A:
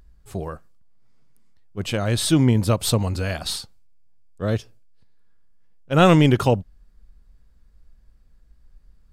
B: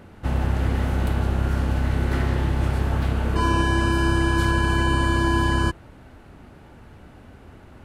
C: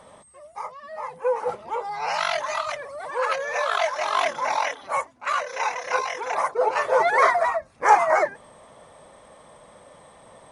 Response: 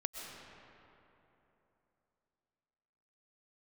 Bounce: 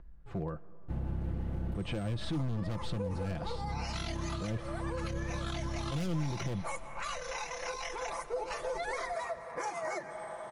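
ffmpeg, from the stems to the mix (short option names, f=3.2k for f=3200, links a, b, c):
-filter_complex "[0:a]lowpass=1.8k,volume=21.5dB,asoftclip=hard,volume=-21.5dB,volume=-2dB,asplit=3[a][b][c];[b]volume=-22.5dB[d];[1:a]tiltshelf=f=720:g=9,aeval=exprs='sgn(val(0))*max(abs(val(0))-0.0237,0)':c=same,adelay=650,volume=-15.5dB[e];[2:a]alimiter=limit=-12.5dB:level=0:latency=1:release=342,adelay=1750,volume=-5dB,asplit=2[f][g];[g]volume=-9dB[h];[c]apad=whole_len=374825[i];[e][i]sidechaincompress=threshold=-41dB:ratio=8:attack=16:release=390[j];[3:a]atrim=start_sample=2205[k];[d][h]amix=inputs=2:normalize=0[l];[l][k]afir=irnorm=-1:irlink=0[m];[a][j][f][m]amix=inputs=4:normalize=0,aecho=1:1:5.9:0.42,acrossover=split=370|3000[n][o][p];[o]acompressor=threshold=-39dB:ratio=4[q];[n][q][p]amix=inputs=3:normalize=0,alimiter=level_in=3dB:limit=-24dB:level=0:latency=1:release=110,volume=-3dB"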